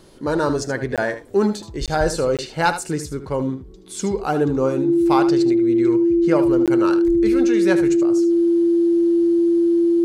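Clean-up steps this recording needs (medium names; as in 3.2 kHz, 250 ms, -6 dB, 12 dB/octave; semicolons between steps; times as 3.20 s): band-stop 340 Hz, Q 30; interpolate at 0.96/1.86/2.37/6.66 s, 17 ms; inverse comb 76 ms -11 dB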